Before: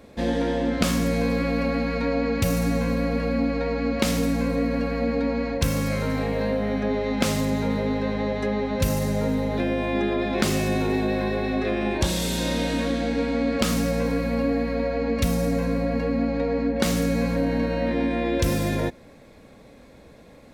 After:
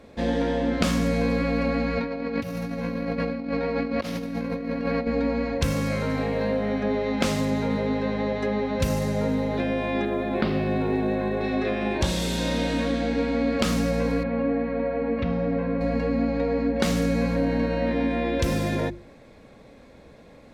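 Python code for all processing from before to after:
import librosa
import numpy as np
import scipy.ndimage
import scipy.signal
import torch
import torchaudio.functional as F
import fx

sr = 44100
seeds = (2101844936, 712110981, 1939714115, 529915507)

y = fx.chain(x, sr, fx.highpass(hz=94.0, slope=12),
    fx.peak_eq(hz=7700.0, db=-10.5, octaves=0.46),
    fx.over_compress(threshold_db=-27.0, ratio=-0.5), at=(1.97, 5.07))
y = fx.chain(y, sr, fx.steep_lowpass(hz=4700.0, slope=48),
    fx.high_shelf(hz=2500.0, db=-10.0),
    fx.quant_companded(bits=8), at=(10.05, 11.41))
y = fx.chain(y, sr, fx.gaussian_blur(sigma=2.9),
    fx.low_shelf(hz=82.0, db=-11.0), at=(14.23, 15.81))
y = fx.high_shelf(y, sr, hz=9500.0, db=-11.5)
y = fx.hum_notches(y, sr, base_hz=50, count=7)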